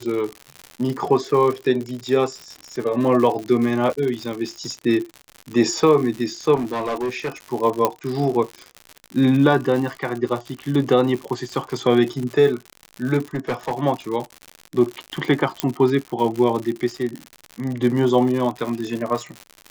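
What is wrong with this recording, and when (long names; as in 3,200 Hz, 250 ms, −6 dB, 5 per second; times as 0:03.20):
surface crackle 110 per second −26 dBFS
0:06.55–0:07.32: clipping −20.5 dBFS
0:07.85: click −4 dBFS
0:13.35–0:13.73: clipping −19 dBFS
0:15.60: click −4 dBFS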